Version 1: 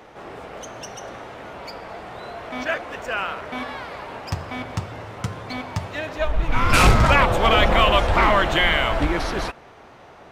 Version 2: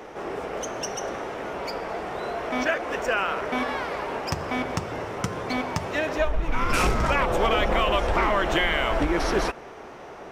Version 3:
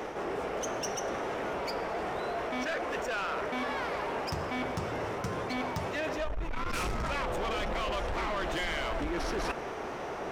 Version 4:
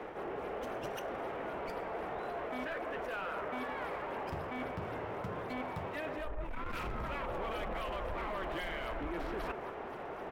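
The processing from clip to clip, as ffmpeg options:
-af "equalizer=f=5600:w=5.1:g=4.5,acompressor=threshold=0.0631:ratio=4,equalizer=f=100:t=o:w=0.67:g=-8,equalizer=f=400:t=o:w=0.67:g=5,equalizer=f=4000:t=o:w=0.67:g=-4,volume=1.5"
-af "asoftclip=type=tanh:threshold=0.0708,areverse,acompressor=threshold=0.0158:ratio=6,areverse,volume=1.68"
-filter_complex "[0:a]acrossover=split=350|1500|3500[s0][s1][s2][s3];[s1]aecho=1:1:180:0.631[s4];[s3]acrusher=samples=27:mix=1:aa=0.000001:lfo=1:lforange=43.2:lforate=3.8[s5];[s0][s4][s2][s5]amix=inputs=4:normalize=0,volume=0.501" -ar 48000 -c:a libvorbis -b:a 64k

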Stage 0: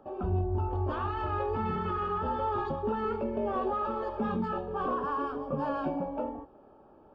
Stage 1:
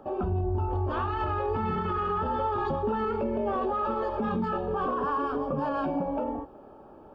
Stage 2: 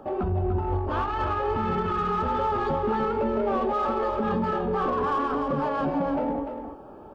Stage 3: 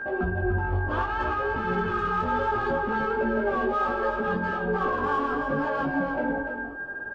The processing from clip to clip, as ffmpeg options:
-af "alimiter=level_in=1.58:limit=0.0631:level=0:latency=1:release=75,volume=0.631,volume=2.24"
-filter_complex "[0:a]asplit=2[s0][s1];[s1]asoftclip=type=tanh:threshold=0.0237,volume=0.631[s2];[s0][s2]amix=inputs=2:normalize=0,aecho=1:1:295:0.447"
-af "aresample=22050,aresample=44100,aeval=exprs='val(0)+0.0251*sin(2*PI*1600*n/s)':c=same,flanger=delay=15:depth=5.9:speed=0.67,volume=1.26"

